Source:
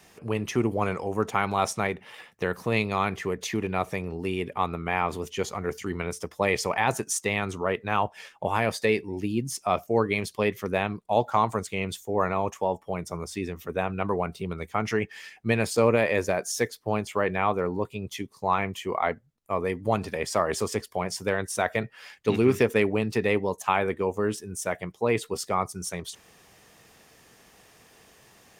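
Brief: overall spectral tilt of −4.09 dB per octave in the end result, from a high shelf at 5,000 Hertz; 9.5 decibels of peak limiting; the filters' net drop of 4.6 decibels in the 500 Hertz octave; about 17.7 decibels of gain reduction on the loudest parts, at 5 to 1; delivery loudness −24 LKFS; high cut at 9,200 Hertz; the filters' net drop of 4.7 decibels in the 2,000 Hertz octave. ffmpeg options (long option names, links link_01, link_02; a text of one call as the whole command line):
ffmpeg -i in.wav -af "lowpass=9200,equalizer=frequency=500:width_type=o:gain=-5.5,equalizer=frequency=2000:width_type=o:gain=-6.5,highshelf=frequency=5000:gain=5,acompressor=threshold=-40dB:ratio=5,volume=22.5dB,alimiter=limit=-11.5dB:level=0:latency=1" out.wav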